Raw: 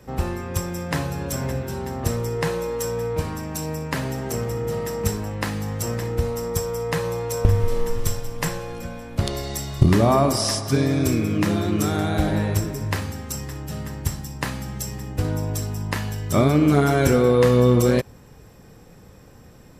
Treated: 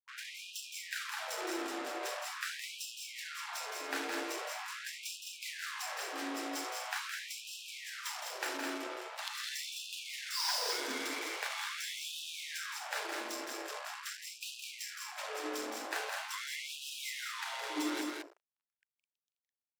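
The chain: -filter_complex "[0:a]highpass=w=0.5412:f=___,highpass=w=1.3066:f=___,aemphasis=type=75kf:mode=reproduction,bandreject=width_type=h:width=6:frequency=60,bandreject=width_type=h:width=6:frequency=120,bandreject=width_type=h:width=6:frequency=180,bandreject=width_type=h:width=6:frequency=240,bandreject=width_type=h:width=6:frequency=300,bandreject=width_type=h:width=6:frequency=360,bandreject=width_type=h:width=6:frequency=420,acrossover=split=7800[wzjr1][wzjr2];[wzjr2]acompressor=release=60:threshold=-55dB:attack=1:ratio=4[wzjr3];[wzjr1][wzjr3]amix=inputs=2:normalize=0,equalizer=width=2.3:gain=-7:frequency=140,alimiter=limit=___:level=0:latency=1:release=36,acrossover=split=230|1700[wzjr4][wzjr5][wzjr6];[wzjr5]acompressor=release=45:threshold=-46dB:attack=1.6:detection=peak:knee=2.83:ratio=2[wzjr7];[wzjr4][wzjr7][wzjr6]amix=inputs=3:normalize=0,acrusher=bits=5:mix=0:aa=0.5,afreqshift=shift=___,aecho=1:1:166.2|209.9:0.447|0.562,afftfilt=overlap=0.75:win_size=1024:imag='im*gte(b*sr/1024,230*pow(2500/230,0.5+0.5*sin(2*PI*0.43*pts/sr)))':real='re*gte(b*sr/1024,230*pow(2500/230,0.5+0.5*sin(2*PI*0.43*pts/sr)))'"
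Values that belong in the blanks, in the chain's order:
75, 75, -15.5dB, -190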